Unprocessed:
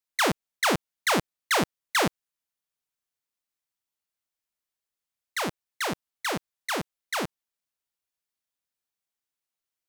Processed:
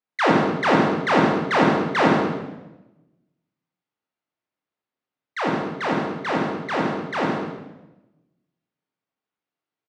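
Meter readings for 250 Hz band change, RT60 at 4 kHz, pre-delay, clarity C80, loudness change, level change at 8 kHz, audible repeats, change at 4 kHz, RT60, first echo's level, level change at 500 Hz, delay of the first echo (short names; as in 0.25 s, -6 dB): +12.0 dB, 0.85 s, 20 ms, 3.0 dB, +7.0 dB, -11.0 dB, 1, -1.5 dB, 1.0 s, -9.0 dB, +10.0 dB, 0.133 s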